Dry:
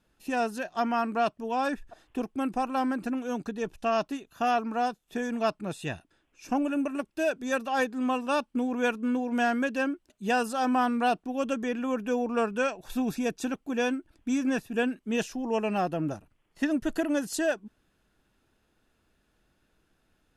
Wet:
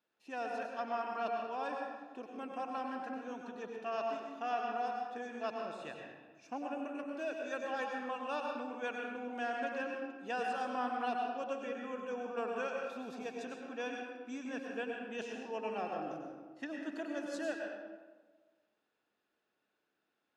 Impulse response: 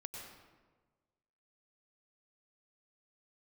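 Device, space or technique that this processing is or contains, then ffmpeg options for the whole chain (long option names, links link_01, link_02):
supermarket ceiling speaker: -filter_complex "[0:a]highpass=340,lowpass=5300[link_01];[1:a]atrim=start_sample=2205[link_02];[link_01][link_02]afir=irnorm=-1:irlink=0,volume=-6dB"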